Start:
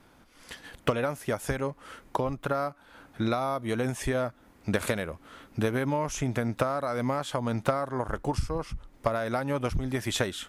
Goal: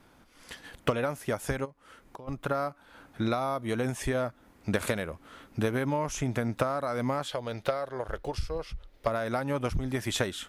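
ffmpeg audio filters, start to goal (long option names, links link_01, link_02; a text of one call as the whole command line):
ffmpeg -i in.wav -filter_complex "[0:a]asplit=3[link_01][link_02][link_03];[link_01]afade=type=out:start_time=1.64:duration=0.02[link_04];[link_02]acompressor=threshold=-50dB:ratio=2.5,afade=type=in:start_time=1.64:duration=0.02,afade=type=out:start_time=2.27:duration=0.02[link_05];[link_03]afade=type=in:start_time=2.27:duration=0.02[link_06];[link_04][link_05][link_06]amix=inputs=3:normalize=0,asettb=1/sr,asplit=3[link_07][link_08][link_09];[link_07]atrim=end=7.284[link_10];[link_08]atrim=start=7.28:end=9.07,asetpts=PTS-STARTPTS,afade=type=in:duration=0.004:curve=qsin,afade=type=out:start_time=1.786:duration=0.004:curve=qsin,equalizer=frequency=125:width_type=o:width=1:gain=-6,equalizer=frequency=250:width_type=o:width=1:gain=-10,equalizer=frequency=500:width_type=o:width=1:gain=4,equalizer=frequency=1000:width_type=o:width=1:gain=-7,equalizer=frequency=4000:width_type=o:width=1:gain=6,equalizer=frequency=8000:width_type=o:width=1:gain=-8[link_11];[link_09]atrim=start=9.066[link_12];[link_10][link_11]acrossfade=duration=0.004:curve1=hsin:curve2=qsin[link_13];[link_13][link_12]acrossfade=duration=0.004:curve1=qsin:curve2=hsin,volume=-1dB" out.wav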